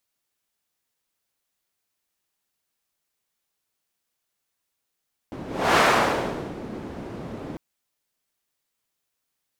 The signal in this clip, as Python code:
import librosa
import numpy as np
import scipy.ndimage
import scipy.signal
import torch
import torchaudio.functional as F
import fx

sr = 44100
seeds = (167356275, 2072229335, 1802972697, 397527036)

y = fx.whoosh(sr, seeds[0], length_s=2.25, peak_s=0.46, rise_s=0.35, fall_s=0.86, ends_hz=280.0, peak_hz=1100.0, q=0.87, swell_db=17.5)